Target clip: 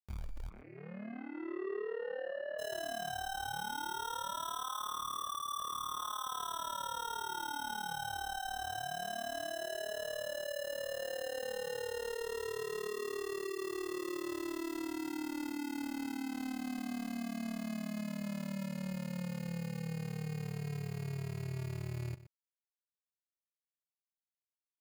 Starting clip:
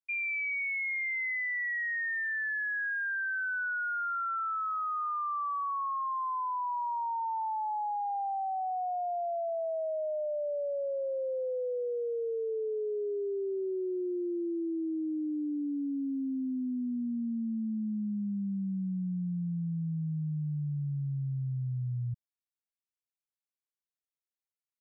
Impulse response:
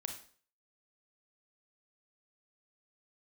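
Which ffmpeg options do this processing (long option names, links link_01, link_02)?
-filter_complex "[0:a]lowshelf=frequency=430:width_type=q:width=1.5:gain=10.5,alimiter=limit=-20dB:level=0:latency=1,acompressor=threshold=-31dB:ratio=8,aeval=exprs='0.0355*(cos(1*acos(clip(val(0)/0.0355,-1,1)))-cos(1*PI/2))+0.000891*(cos(6*acos(clip(val(0)/0.0355,-1,1)))-cos(6*PI/2))+0.000891*(cos(8*acos(clip(val(0)/0.0355,-1,1)))-cos(8*PI/2))':channel_layout=same,acrusher=bits=7:mix=0:aa=0.000001,asoftclip=type=tanh:threshold=-39.5dB,tremolo=f=37:d=0.889,acrusher=samples=19:mix=1:aa=0.000001,asplit=3[link_01][link_02][link_03];[link_01]afade=type=out:start_time=0.48:duration=0.02[link_04];[link_02]highpass=frequency=210:width=0.5412,highpass=frequency=210:width=1.3066,equalizer=frequency=270:width_type=q:width=4:gain=-7,equalizer=frequency=400:width_type=q:width=4:gain=3,equalizer=frequency=940:width_type=q:width=4:gain=-6,lowpass=frequency=2100:width=0.5412,lowpass=frequency=2100:width=1.3066,afade=type=in:start_time=0.48:duration=0.02,afade=type=out:start_time=2.58:duration=0.02[link_05];[link_03]afade=type=in:start_time=2.58:duration=0.02[link_06];[link_04][link_05][link_06]amix=inputs=3:normalize=0,asplit=2[link_07][link_08];[link_08]adelay=122.4,volume=-15dB,highshelf=frequency=4000:gain=-2.76[link_09];[link_07][link_09]amix=inputs=2:normalize=0,volume=5dB"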